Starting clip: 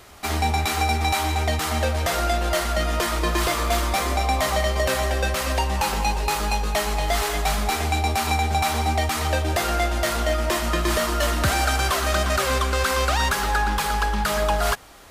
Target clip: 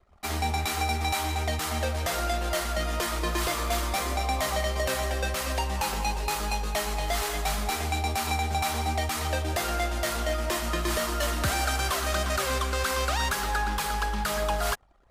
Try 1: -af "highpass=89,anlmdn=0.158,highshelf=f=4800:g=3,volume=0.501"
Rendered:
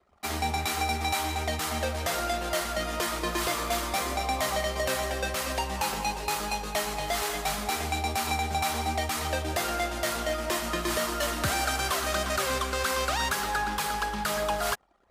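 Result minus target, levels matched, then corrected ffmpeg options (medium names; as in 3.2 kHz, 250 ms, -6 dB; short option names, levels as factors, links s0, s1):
125 Hz band -4.5 dB
-af "anlmdn=0.158,highshelf=f=4800:g=3,volume=0.501"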